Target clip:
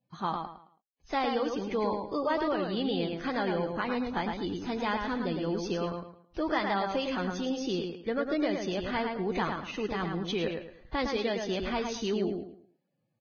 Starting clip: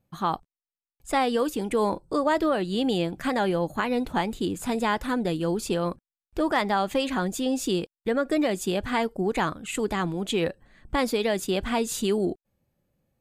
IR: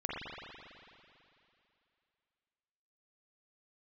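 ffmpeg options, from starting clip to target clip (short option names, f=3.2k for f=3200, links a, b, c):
-filter_complex "[0:a]asplit=2[a][b];[b]adelay=109,lowpass=f=4.9k:p=1,volume=-4.5dB,asplit=2[c][d];[d]adelay=109,lowpass=f=4.9k:p=1,volume=0.31,asplit=2[e][f];[f]adelay=109,lowpass=f=4.9k:p=1,volume=0.31,asplit=2[g][h];[h]adelay=109,lowpass=f=4.9k:p=1,volume=0.31[i];[a][c][e][g][i]amix=inputs=5:normalize=0,volume=-6.5dB" -ar 16000 -c:a libvorbis -b:a 16k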